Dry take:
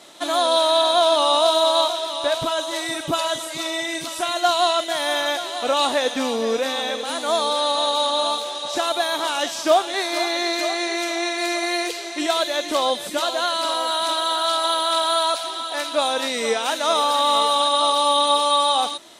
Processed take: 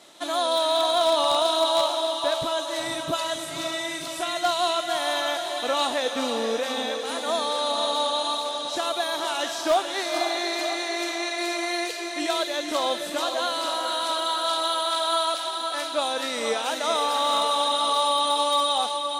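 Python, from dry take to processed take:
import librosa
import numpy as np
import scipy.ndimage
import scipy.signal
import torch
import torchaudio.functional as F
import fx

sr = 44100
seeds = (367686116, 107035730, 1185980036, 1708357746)

y = fx.echo_diffused(x, sr, ms=489, feedback_pct=41, wet_db=-6.5)
y = 10.0 ** (-8.0 / 20.0) * (np.abs((y / 10.0 ** (-8.0 / 20.0) + 3.0) % 4.0 - 2.0) - 1.0)
y = y * 10.0 ** (-5.0 / 20.0)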